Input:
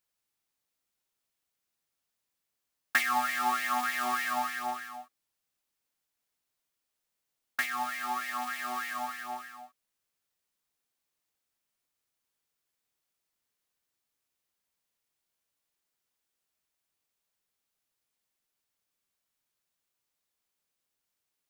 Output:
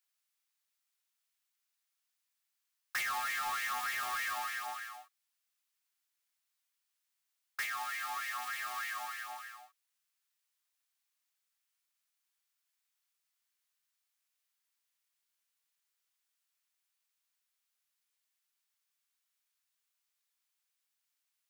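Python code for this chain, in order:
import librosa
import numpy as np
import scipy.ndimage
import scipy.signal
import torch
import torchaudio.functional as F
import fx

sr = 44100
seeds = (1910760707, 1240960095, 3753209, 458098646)

y = scipy.signal.sosfilt(scipy.signal.butter(2, 1200.0, 'highpass', fs=sr, output='sos'), x)
y = 10.0 ** (-31.0 / 20.0) * np.tanh(y / 10.0 ** (-31.0 / 20.0))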